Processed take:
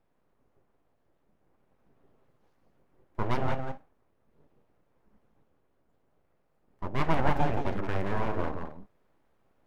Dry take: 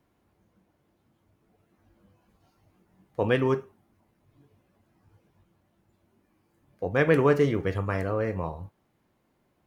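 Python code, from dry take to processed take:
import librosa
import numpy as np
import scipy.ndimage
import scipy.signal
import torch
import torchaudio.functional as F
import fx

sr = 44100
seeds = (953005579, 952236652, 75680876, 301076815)

p1 = fx.rider(x, sr, range_db=10, speed_s=2.0)
p2 = p1 + fx.echo_single(p1, sr, ms=172, db=-6.5, dry=0)
p3 = np.abs(p2)
y = fx.high_shelf(p3, sr, hz=2200.0, db=-11.0)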